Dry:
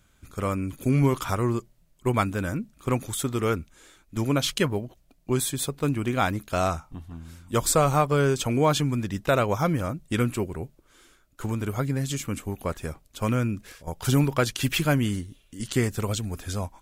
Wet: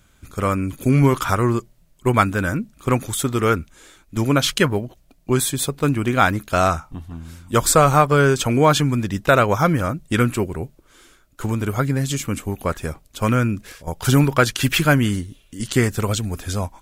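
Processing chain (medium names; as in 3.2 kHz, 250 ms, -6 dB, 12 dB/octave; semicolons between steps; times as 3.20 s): dynamic bell 1.5 kHz, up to +5 dB, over -41 dBFS, Q 1.9; trim +6 dB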